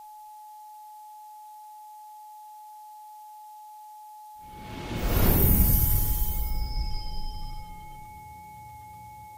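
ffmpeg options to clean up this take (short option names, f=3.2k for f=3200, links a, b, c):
-af "bandreject=f=850:w=30,agate=range=-21dB:threshold=-38dB"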